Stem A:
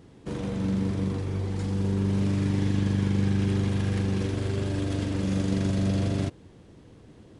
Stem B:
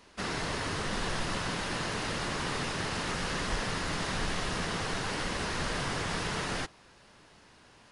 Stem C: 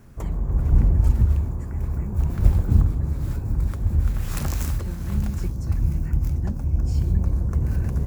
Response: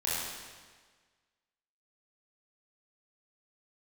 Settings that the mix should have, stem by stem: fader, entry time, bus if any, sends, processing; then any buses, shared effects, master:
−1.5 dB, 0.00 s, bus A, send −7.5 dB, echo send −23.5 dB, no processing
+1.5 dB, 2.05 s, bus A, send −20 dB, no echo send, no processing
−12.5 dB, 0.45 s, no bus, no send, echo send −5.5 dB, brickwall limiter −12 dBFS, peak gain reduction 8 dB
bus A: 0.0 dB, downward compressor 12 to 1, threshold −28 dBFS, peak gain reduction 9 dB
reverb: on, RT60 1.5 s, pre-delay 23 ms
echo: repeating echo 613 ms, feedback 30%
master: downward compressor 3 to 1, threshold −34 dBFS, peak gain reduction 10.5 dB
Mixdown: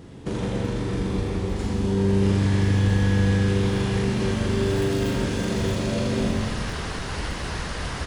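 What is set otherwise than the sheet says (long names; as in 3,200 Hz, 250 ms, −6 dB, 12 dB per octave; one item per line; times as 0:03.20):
stem A −1.5 dB → +5.0 dB
master: missing downward compressor 3 to 1, threshold −34 dBFS, peak gain reduction 10.5 dB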